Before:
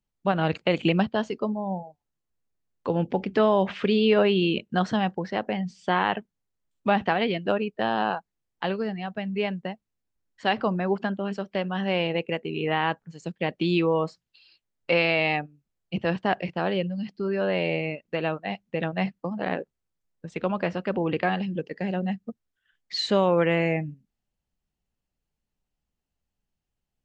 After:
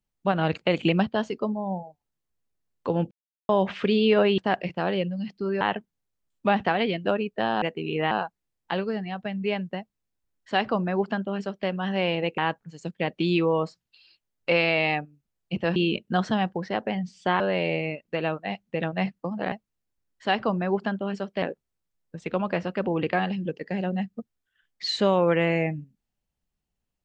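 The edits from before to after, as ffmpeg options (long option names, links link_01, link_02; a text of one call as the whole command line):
ffmpeg -i in.wav -filter_complex "[0:a]asplit=12[link_01][link_02][link_03][link_04][link_05][link_06][link_07][link_08][link_09][link_10][link_11][link_12];[link_01]atrim=end=3.11,asetpts=PTS-STARTPTS,afade=type=out:start_time=3.106:duration=0.004:curve=hsin[link_13];[link_02]atrim=start=3.11:end=3.49,asetpts=PTS-STARTPTS,volume=0[link_14];[link_03]atrim=start=3.49:end=4.382,asetpts=PTS-STARTPTS,afade=type=in:duration=0.004:curve=hsin[link_15];[link_04]atrim=start=16.168:end=17.402[link_16];[link_05]atrim=start=6.018:end=8.032[link_17];[link_06]atrim=start=12.298:end=12.792[link_18];[link_07]atrim=start=8.028:end=12.302[link_19];[link_08]atrim=start=12.788:end=16.172[link_20];[link_09]atrim=start=4.378:end=6.022[link_21];[link_10]atrim=start=17.398:end=19.522[link_22];[link_11]atrim=start=9.698:end=11.602[link_23];[link_12]atrim=start=19.518[link_24];[link_13][link_14][link_15]concat=n=3:v=0:a=1[link_25];[link_25][link_16]acrossfade=duration=0.004:curve1=hsin:curve2=hsin[link_26];[link_26][link_17]acrossfade=duration=0.004:curve1=hsin:curve2=hsin[link_27];[link_27][link_18]acrossfade=duration=0.004:curve1=hsin:curve2=hsin[link_28];[link_28][link_19]acrossfade=duration=0.004:curve1=hsin:curve2=hsin[link_29];[link_29][link_20]acrossfade=duration=0.004:curve1=hsin:curve2=hsin[link_30];[link_30][link_21]acrossfade=duration=0.004:curve1=hsin:curve2=hsin[link_31];[link_31][link_22]acrossfade=duration=0.004:curve1=hsin:curve2=hsin[link_32];[link_32][link_23]acrossfade=duration=0.004:curve1=hsin:curve2=hsin[link_33];[link_33][link_24]acrossfade=duration=0.004:curve1=hsin:curve2=hsin" out.wav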